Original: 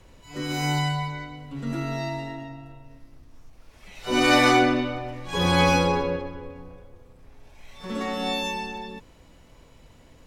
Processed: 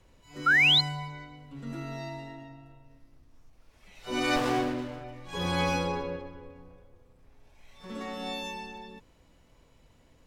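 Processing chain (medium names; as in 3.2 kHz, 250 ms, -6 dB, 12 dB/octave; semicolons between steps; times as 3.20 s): 0.46–0.81 s: painted sound rise 1.3–4.3 kHz -12 dBFS; 4.36–5.04 s: sliding maximum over 17 samples; trim -8.5 dB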